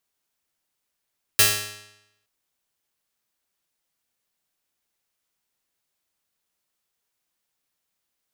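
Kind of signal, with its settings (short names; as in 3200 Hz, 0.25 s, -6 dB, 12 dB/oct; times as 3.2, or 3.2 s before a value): plucked string G#2, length 0.87 s, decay 0.87 s, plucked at 0.41, bright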